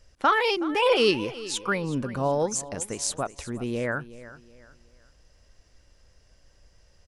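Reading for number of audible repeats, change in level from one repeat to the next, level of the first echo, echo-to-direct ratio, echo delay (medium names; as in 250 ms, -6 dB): 2, -9.5 dB, -16.5 dB, -16.0 dB, 371 ms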